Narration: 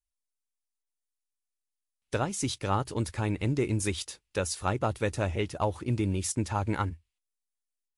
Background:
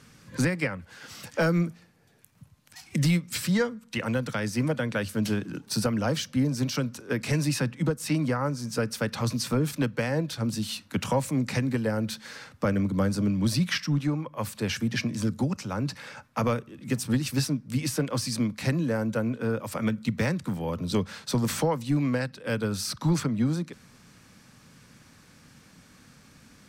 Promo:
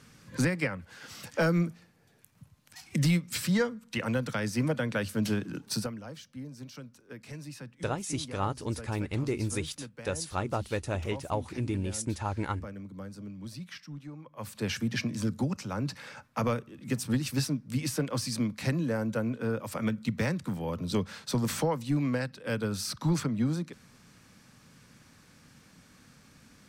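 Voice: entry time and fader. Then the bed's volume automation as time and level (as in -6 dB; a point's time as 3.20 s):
5.70 s, -3.0 dB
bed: 5.73 s -2 dB
6.02 s -17 dB
14.11 s -17 dB
14.63 s -3 dB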